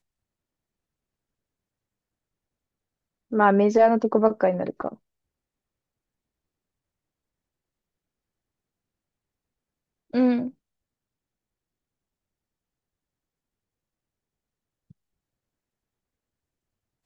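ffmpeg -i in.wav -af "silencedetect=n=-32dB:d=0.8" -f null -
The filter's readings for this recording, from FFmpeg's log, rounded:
silence_start: 0.00
silence_end: 3.32 | silence_duration: 3.32
silence_start: 4.93
silence_end: 10.14 | silence_duration: 5.20
silence_start: 10.48
silence_end: 17.05 | silence_duration: 6.57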